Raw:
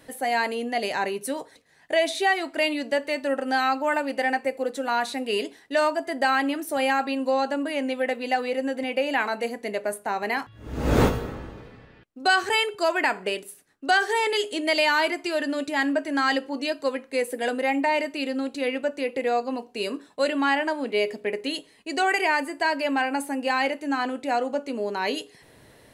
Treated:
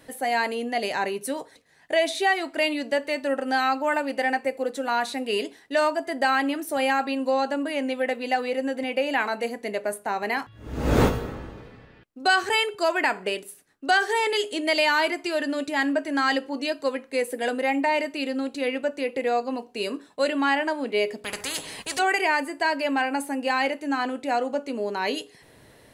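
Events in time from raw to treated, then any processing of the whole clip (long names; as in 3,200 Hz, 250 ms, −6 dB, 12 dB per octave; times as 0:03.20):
0:21.24–0:21.99: every bin compressed towards the loudest bin 4 to 1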